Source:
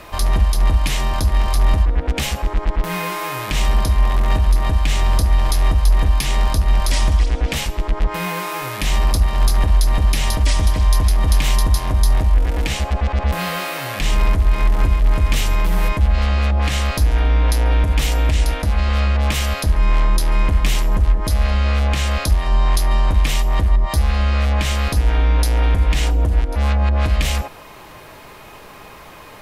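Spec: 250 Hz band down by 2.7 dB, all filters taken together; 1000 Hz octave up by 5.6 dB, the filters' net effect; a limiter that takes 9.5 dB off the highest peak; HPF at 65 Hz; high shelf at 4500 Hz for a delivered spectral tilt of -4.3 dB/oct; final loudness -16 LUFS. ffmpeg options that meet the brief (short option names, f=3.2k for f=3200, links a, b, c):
-af "highpass=65,equalizer=f=250:t=o:g=-4,equalizer=f=1k:t=o:g=6.5,highshelf=f=4.5k:g=4.5,volume=8dB,alimiter=limit=-6dB:level=0:latency=1"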